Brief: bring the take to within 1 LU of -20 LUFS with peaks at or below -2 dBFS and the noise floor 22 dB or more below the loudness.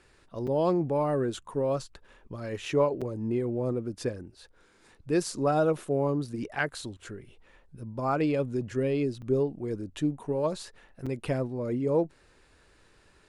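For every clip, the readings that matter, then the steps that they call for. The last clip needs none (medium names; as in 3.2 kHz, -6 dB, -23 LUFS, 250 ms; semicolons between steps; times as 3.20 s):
dropouts 4; longest dropout 5.8 ms; loudness -29.5 LUFS; peak level -12.5 dBFS; loudness target -20.0 LUFS
-> interpolate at 0.47/3.01/9.22/11.06 s, 5.8 ms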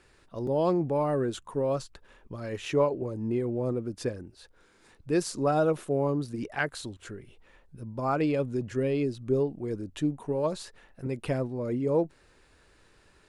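dropouts 0; loudness -29.5 LUFS; peak level -12.5 dBFS; loudness target -20.0 LUFS
-> trim +9.5 dB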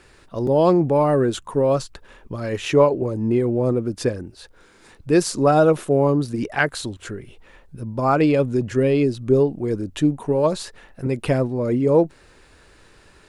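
loudness -20.0 LUFS; peak level -3.0 dBFS; noise floor -52 dBFS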